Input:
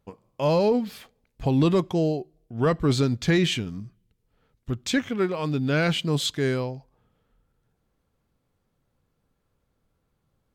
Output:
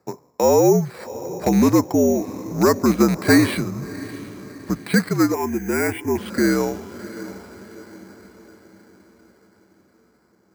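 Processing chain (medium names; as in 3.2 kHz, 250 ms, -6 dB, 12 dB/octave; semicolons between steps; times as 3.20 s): rattle on loud lows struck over -23 dBFS, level -26 dBFS; mistuned SSB -66 Hz 230–2200 Hz; in parallel at +3 dB: compression, threshold -34 dBFS, peak gain reduction 15 dB; on the sum: echo that smears into a reverb 694 ms, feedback 48%, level -15.5 dB; 2.98–3.57 s: dynamic bell 770 Hz, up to +7 dB, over -37 dBFS, Q 0.73; sample-and-hold 7×; 5.34–6.18 s: static phaser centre 830 Hz, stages 8; trim +5 dB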